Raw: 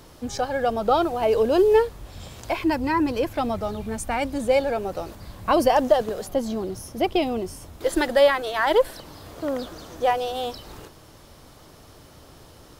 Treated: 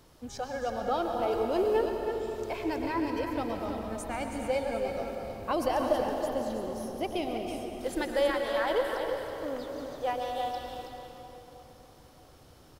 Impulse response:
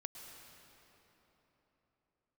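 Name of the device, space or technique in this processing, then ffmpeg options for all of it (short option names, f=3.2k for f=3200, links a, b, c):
cave: -filter_complex "[0:a]aecho=1:1:324:0.398[a];[1:a]atrim=start_sample=2205[b];[a][b]afir=irnorm=-1:irlink=0,volume=-5.5dB"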